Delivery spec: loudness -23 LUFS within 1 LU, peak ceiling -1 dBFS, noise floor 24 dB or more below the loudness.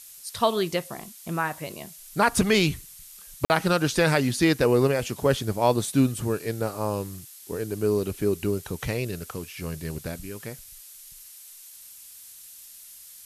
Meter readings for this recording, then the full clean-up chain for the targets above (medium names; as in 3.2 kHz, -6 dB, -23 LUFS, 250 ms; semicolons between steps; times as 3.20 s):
dropouts 1; longest dropout 49 ms; noise floor -47 dBFS; noise floor target -50 dBFS; loudness -25.5 LUFS; peak level -8.0 dBFS; loudness target -23.0 LUFS
-> interpolate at 3.45 s, 49 ms; noise print and reduce 6 dB; trim +2.5 dB